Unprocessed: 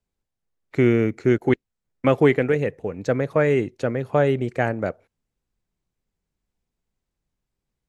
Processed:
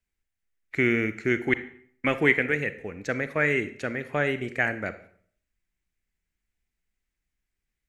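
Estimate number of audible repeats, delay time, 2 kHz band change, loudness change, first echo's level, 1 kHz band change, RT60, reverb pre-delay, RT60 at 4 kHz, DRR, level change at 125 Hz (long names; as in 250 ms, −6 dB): no echo audible, no echo audible, +5.0 dB, −4.5 dB, no echo audible, −6.0 dB, 0.55 s, 33 ms, 0.45 s, 12.0 dB, −9.5 dB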